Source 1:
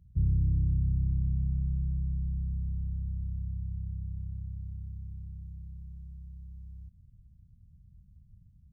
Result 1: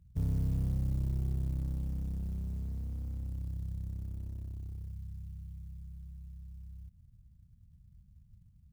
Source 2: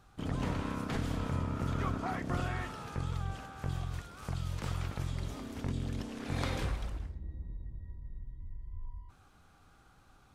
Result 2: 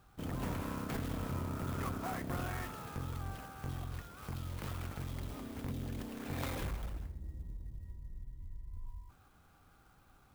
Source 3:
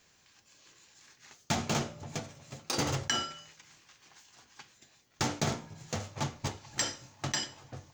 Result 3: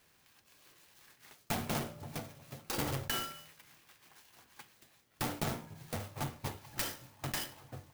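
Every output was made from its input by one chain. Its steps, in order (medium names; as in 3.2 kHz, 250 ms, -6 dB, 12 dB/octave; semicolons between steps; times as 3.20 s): one-sided clip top -35 dBFS; sampling jitter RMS 0.039 ms; trim -2 dB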